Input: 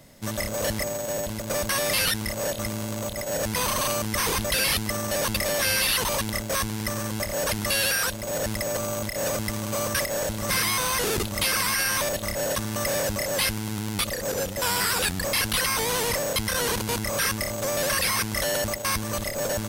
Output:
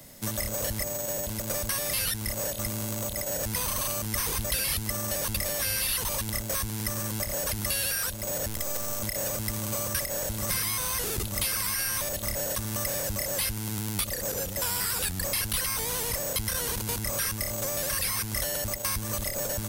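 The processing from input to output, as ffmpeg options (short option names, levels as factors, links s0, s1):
-filter_complex "[0:a]asplit=3[s0][s1][s2];[s0]afade=t=out:st=8.47:d=0.02[s3];[s1]aeval=exprs='max(val(0),0)':c=same,afade=t=in:st=8.47:d=0.02,afade=t=out:st=9.01:d=0.02[s4];[s2]afade=t=in:st=9.01:d=0.02[s5];[s3][s4][s5]amix=inputs=3:normalize=0,acrossover=split=120[s6][s7];[s7]acompressor=threshold=0.0224:ratio=3[s8];[s6][s8]amix=inputs=2:normalize=0,highshelf=f=7300:g=12"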